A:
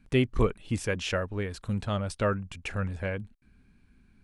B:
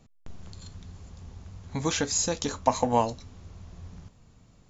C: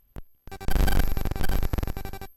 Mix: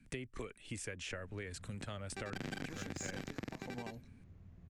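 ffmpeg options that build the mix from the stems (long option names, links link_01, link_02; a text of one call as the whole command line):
ffmpeg -i stem1.wav -i stem2.wav -i stem3.wav -filter_complex "[0:a]acrossover=split=81|330|1700[link_01][link_02][link_03][link_04];[link_01]acompressor=threshold=-41dB:ratio=4[link_05];[link_02]acompressor=threshold=-49dB:ratio=4[link_06];[link_03]acompressor=threshold=-31dB:ratio=4[link_07];[link_04]acompressor=threshold=-41dB:ratio=4[link_08];[link_05][link_06][link_07][link_08]amix=inputs=4:normalize=0,volume=-7dB[link_09];[1:a]alimiter=limit=-17.5dB:level=0:latency=1:release=201,adynamicsmooth=sensitivity=7:basefreq=2000,adelay=850,volume=-15dB[link_10];[2:a]acrossover=split=150 5700:gain=0.0708 1 0.0891[link_11][link_12][link_13];[link_11][link_12][link_13]amix=inputs=3:normalize=0,adelay=1650,volume=-4dB[link_14];[link_09][link_10][link_14]amix=inputs=3:normalize=0,equalizer=frequency=125:width_type=o:width=1:gain=6,equalizer=frequency=250:width_type=o:width=1:gain=5,equalizer=frequency=1000:width_type=o:width=1:gain=-5,equalizer=frequency=2000:width_type=o:width=1:gain=7,equalizer=frequency=8000:width_type=o:width=1:gain=10,acompressor=threshold=-40dB:ratio=5" out.wav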